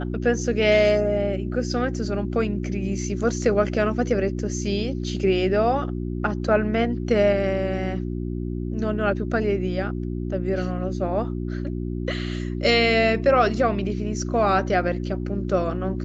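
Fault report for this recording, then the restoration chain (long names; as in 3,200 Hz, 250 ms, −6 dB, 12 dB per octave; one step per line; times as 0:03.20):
mains hum 60 Hz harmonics 6 −28 dBFS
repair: hum removal 60 Hz, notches 6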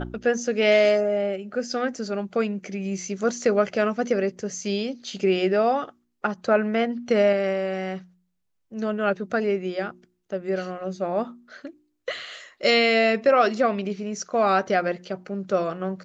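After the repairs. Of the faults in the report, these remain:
none of them is left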